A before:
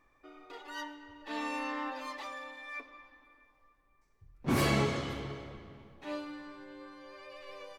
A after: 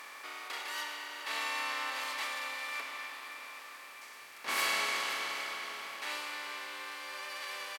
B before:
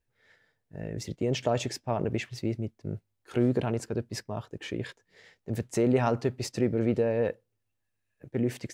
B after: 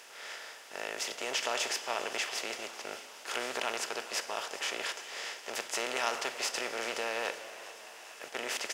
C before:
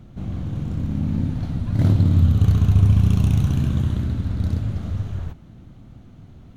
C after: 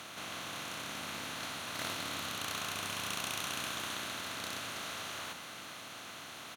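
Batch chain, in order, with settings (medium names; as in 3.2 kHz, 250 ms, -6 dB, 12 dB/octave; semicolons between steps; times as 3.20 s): spectral levelling over time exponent 0.4; high-pass 1.2 kHz 12 dB/octave; on a send: frequency-shifting echo 405 ms, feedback 61%, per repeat +84 Hz, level -17 dB; on the sum: Schroeder reverb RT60 3.8 s, combs from 31 ms, DRR 12 dB; Opus 128 kbps 48 kHz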